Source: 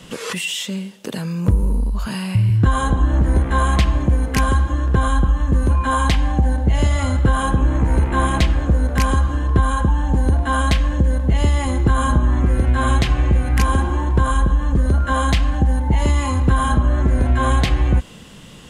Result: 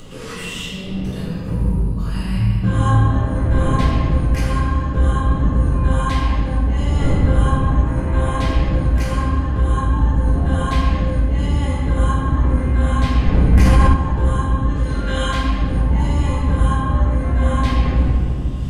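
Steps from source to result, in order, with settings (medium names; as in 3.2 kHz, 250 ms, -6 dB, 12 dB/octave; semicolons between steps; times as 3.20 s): wind noise 190 Hz -25 dBFS; 14.69–15.27 s: frequency weighting D; upward compressor, threshold -26 dBFS; 2.25–3.20 s: doubling 26 ms -2 dB; reverberation RT60 2.2 s, pre-delay 3 ms, DRR -11.5 dB; 13.53–13.94 s: level flattener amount 70%; trim -14.5 dB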